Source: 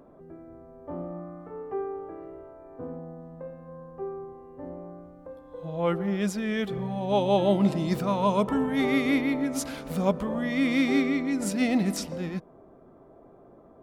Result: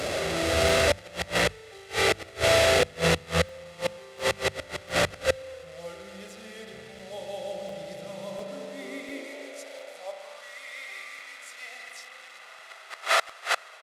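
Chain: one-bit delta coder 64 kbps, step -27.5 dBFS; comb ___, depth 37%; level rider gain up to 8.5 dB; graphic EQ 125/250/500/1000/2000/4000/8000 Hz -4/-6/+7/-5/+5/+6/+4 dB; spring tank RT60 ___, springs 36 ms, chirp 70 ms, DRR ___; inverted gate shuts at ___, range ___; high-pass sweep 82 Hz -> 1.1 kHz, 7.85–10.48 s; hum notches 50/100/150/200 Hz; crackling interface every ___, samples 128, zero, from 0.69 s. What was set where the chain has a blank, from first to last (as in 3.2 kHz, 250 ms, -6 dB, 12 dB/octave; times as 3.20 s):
1.5 ms, 4 s, -0.5 dB, -10 dBFS, -27 dB, 0.70 s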